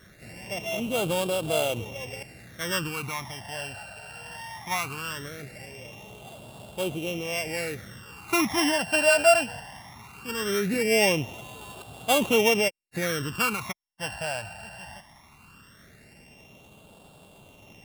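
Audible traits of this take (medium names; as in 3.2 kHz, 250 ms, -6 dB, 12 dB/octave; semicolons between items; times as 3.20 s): a buzz of ramps at a fixed pitch in blocks of 16 samples; phasing stages 12, 0.19 Hz, lowest notch 360–1900 Hz; MP3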